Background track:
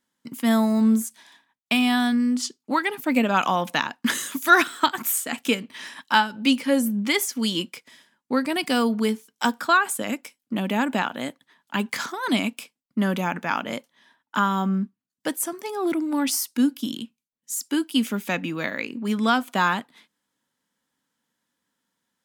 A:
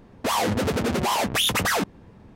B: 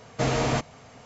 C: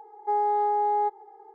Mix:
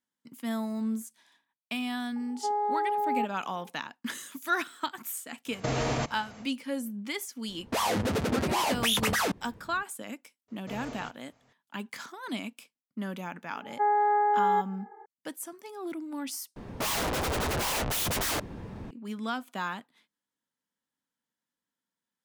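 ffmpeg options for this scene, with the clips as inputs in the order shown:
-filter_complex "[3:a]asplit=2[s0][s1];[2:a]asplit=2[s2][s3];[1:a]asplit=2[s4][s5];[0:a]volume=0.237[s6];[s2]alimiter=limit=0.106:level=0:latency=1:release=60[s7];[s3]flanger=delay=22.5:depth=5:speed=2.9[s8];[s1]lowpass=f=1800:t=q:w=13[s9];[s5]aeval=exprs='0.251*sin(PI/2*7.94*val(0)/0.251)':c=same[s10];[s6]asplit=2[s11][s12];[s11]atrim=end=16.564[s13];[s10]atrim=end=2.35,asetpts=PTS-STARTPTS,volume=0.188[s14];[s12]atrim=start=18.906[s15];[s0]atrim=end=1.54,asetpts=PTS-STARTPTS,volume=0.596,afade=t=in:d=0.004:c=hsin,afade=t=out:st=1.536:d=0.004:c=hsin,adelay=2160[s16];[s7]atrim=end=1.05,asetpts=PTS-STARTPTS,volume=0.944,afade=t=in:d=0.1,afade=t=out:st=0.95:d=0.1,adelay=240345S[s17];[s4]atrim=end=2.35,asetpts=PTS-STARTPTS,volume=0.596,afade=t=in:d=0.004:c=hsin,afade=t=out:st=2.346:d=0.004:c=hsin,adelay=7480[s18];[s8]atrim=end=1.05,asetpts=PTS-STARTPTS,volume=0.178,afade=t=in:d=0.004:c=hsin,afade=t=out:st=1.046:d=0.004:c=hsin,adelay=10480[s19];[s9]atrim=end=1.54,asetpts=PTS-STARTPTS,volume=0.794,afade=t=in:d=0.004:c=hsin,afade=t=out:st=1.536:d=0.004:c=hsin,adelay=13520[s20];[s13][s14]acrossfade=d=0.004:c1=hsin:c2=hsin[s21];[s21][s15]acrossfade=d=0.004:c1=hsin:c2=hsin[s22];[s22][s16][s17][s18][s19][s20]amix=inputs=6:normalize=0"

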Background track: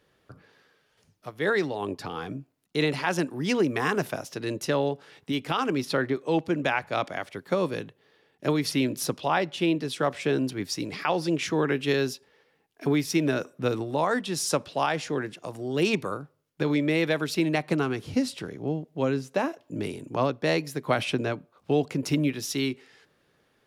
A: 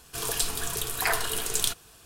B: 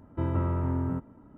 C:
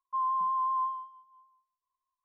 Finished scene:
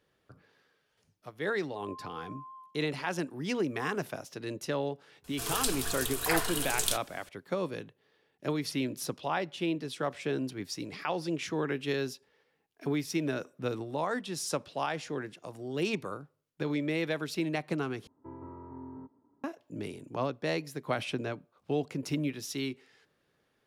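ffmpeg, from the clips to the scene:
-filter_complex "[0:a]volume=0.447[s0];[3:a]acompressor=threshold=0.02:ratio=6:attack=3.2:release=140:knee=1:detection=peak[s1];[2:a]highpass=130,equalizer=f=190:t=q:w=4:g=-8,equalizer=f=270:t=q:w=4:g=6,equalizer=f=400:t=q:w=4:g=8,equalizer=f=600:t=q:w=4:g=-4,equalizer=f=950:t=q:w=4:g=9,equalizer=f=1400:t=q:w=4:g=-5,lowpass=f=2000:w=0.5412,lowpass=f=2000:w=1.3066[s2];[s0]asplit=2[s3][s4];[s3]atrim=end=18.074[s5];[s2]atrim=end=1.37,asetpts=PTS-STARTPTS,volume=0.133[s6];[s4]atrim=start=19.436[s7];[s1]atrim=end=2.24,asetpts=PTS-STARTPTS,volume=0.266,afade=t=in:d=0.004:c=hsin,afade=t=out:st=2.236:d=0.004:c=hsin,adelay=1630[s8];[1:a]atrim=end=2.05,asetpts=PTS-STARTPTS,volume=0.668,afade=t=in:d=0.004:c=hsin,afade=t=out:st=2.046:d=0.004:c=hsin,adelay=5240[s9];[s5][s6]acrossfade=d=0.004:c1=hsin:c2=hsin[s10];[s10][s7]acrossfade=d=0.004:c1=hsin:c2=hsin[s11];[s11][s8][s9]amix=inputs=3:normalize=0"

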